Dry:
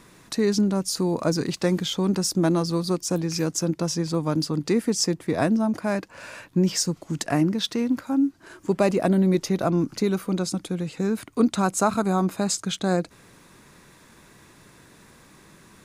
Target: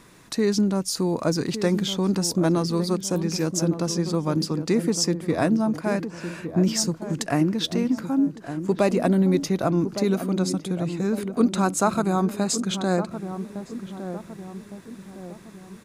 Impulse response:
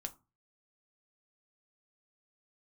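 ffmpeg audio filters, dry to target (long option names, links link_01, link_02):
-filter_complex "[0:a]asplit=2[link_01][link_02];[link_02]adelay=1160,lowpass=frequency=830:poles=1,volume=-9dB,asplit=2[link_03][link_04];[link_04]adelay=1160,lowpass=frequency=830:poles=1,volume=0.53,asplit=2[link_05][link_06];[link_06]adelay=1160,lowpass=frequency=830:poles=1,volume=0.53,asplit=2[link_07][link_08];[link_08]adelay=1160,lowpass=frequency=830:poles=1,volume=0.53,asplit=2[link_09][link_10];[link_10]adelay=1160,lowpass=frequency=830:poles=1,volume=0.53,asplit=2[link_11][link_12];[link_12]adelay=1160,lowpass=frequency=830:poles=1,volume=0.53[link_13];[link_01][link_03][link_05][link_07][link_09][link_11][link_13]amix=inputs=7:normalize=0"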